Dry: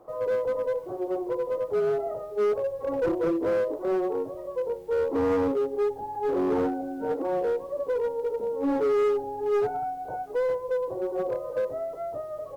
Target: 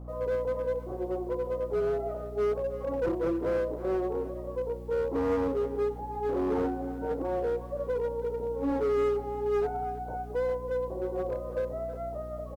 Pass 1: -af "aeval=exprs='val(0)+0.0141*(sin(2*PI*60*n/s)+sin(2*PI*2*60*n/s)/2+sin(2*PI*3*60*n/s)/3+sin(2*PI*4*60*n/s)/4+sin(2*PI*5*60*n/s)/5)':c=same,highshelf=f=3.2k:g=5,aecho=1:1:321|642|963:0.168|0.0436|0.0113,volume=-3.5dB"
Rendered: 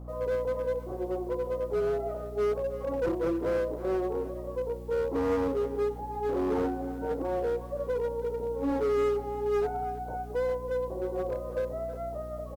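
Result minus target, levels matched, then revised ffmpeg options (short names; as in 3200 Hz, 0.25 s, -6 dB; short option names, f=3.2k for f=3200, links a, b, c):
8000 Hz band +4.0 dB
-af "aeval=exprs='val(0)+0.0141*(sin(2*PI*60*n/s)+sin(2*PI*2*60*n/s)/2+sin(2*PI*3*60*n/s)/3+sin(2*PI*4*60*n/s)/4+sin(2*PI*5*60*n/s)/5)':c=same,aecho=1:1:321|642|963:0.168|0.0436|0.0113,volume=-3.5dB"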